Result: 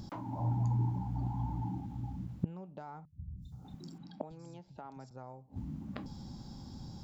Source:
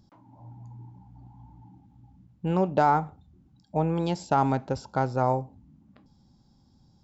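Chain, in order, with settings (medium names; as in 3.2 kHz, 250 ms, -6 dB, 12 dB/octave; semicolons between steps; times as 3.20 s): dynamic bell 170 Hz, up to +6 dB, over -42 dBFS, Q 2.5; compression 3:1, threshold -29 dBFS, peak gain reduction 9.5 dB; inverted gate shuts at -34 dBFS, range -31 dB; 3.05–5.11 s: three bands offset in time lows, highs, mids 240/470 ms, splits 170/4100 Hz; trim +14 dB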